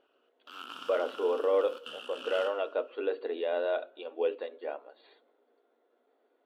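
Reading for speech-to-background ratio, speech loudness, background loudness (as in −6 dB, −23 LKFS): 12.0 dB, −32.0 LKFS, −44.0 LKFS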